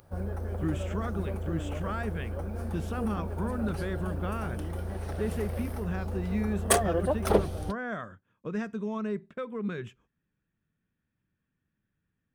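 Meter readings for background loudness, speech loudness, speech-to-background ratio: -33.0 LUFS, -35.5 LUFS, -2.5 dB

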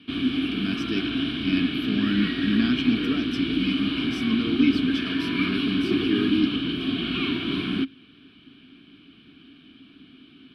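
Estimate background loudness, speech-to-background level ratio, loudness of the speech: -26.0 LUFS, -1.5 dB, -27.5 LUFS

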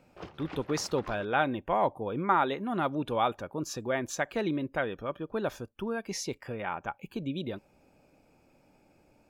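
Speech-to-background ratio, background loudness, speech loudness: 14.5 dB, -46.5 LUFS, -32.0 LUFS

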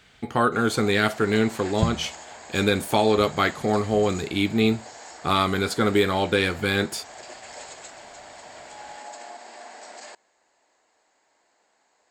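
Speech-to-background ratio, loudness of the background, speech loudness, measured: 18.5 dB, -41.5 LUFS, -23.0 LUFS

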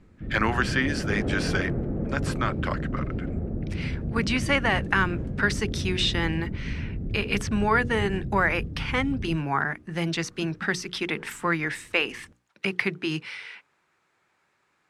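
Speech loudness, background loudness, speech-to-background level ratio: -27.0 LUFS, -32.0 LUFS, 5.0 dB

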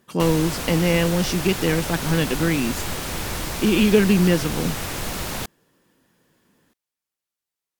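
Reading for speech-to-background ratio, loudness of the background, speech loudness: 7.0 dB, -28.0 LUFS, -21.0 LUFS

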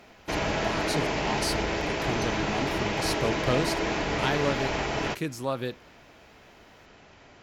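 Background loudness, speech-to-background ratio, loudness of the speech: -28.5 LUFS, -4.5 dB, -33.0 LUFS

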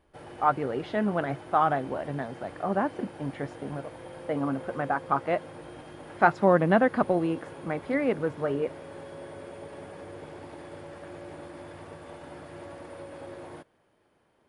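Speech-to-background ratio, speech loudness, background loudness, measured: 16.0 dB, -28.0 LUFS, -44.0 LUFS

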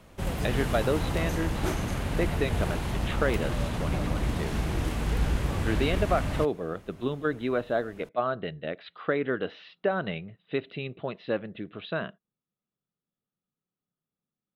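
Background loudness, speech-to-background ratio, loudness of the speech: -30.5 LUFS, -1.5 dB, -32.0 LUFS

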